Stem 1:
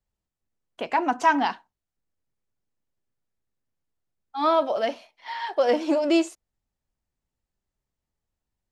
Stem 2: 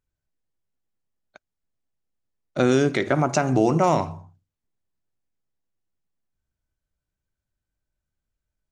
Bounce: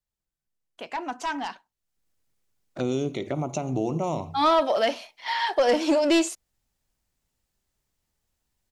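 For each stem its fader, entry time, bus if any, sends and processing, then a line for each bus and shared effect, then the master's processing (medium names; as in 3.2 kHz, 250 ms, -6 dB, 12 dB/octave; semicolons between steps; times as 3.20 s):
1.62 s -15 dB -> 2.08 s -2.5 dB, 0.00 s, no send, treble shelf 2.2 kHz +7.5 dB; sine folder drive 3 dB, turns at -8.5 dBFS
-6.0 dB, 0.20 s, no send, touch-sensitive flanger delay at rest 5.9 ms, full sweep at -19.5 dBFS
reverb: none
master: compression 1.5:1, threshold -23 dBFS, peak gain reduction 3.5 dB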